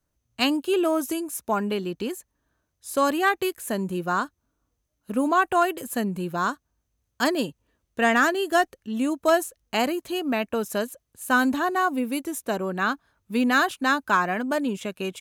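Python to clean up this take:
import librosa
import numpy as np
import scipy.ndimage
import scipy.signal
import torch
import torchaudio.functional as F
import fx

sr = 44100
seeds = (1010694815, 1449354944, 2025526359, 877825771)

y = fx.fix_declip(x, sr, threshold_db=-11.0)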